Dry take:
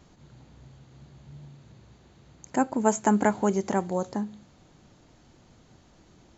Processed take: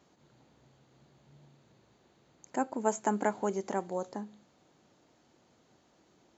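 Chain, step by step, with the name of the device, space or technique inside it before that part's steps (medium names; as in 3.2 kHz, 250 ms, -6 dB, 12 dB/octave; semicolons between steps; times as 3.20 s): filter by subtraction (in parallel: low-pass 440 Hz 12 dB/octave + polarity flip); on the sum: trim -7.5 dB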